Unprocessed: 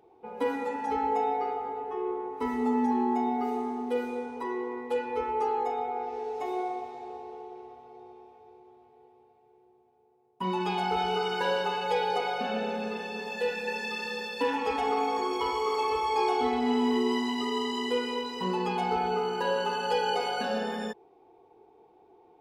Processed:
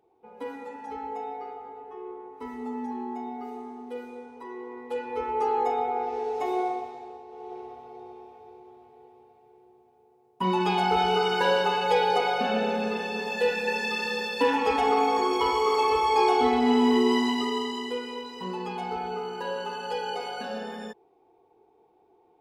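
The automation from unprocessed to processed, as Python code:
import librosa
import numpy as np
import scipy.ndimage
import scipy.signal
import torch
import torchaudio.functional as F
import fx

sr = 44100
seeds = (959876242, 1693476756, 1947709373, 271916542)

y = fx.gain(x, sr, db=fx.line((4.43, -7.5), (5.66, 4.5), (6.68, 4.5), (7.27, -4.0), (7.52, 5.0), (17.27, 5.0), (17.99, -4.0)))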